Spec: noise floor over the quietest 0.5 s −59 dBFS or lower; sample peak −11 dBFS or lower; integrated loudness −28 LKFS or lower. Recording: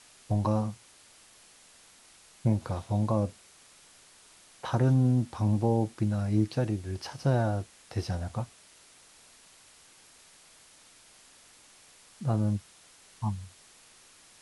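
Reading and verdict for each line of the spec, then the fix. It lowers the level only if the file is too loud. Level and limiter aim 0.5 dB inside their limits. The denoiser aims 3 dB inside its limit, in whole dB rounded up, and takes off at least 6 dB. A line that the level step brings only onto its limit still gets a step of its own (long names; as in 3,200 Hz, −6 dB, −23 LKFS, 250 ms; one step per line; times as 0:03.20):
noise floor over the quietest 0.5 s −57 dBFS: out of spec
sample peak −13.0 dBFS: in spec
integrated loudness −30.0 LKFS: in spec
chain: broadband denoise 6 dB, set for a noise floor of −57 dBFS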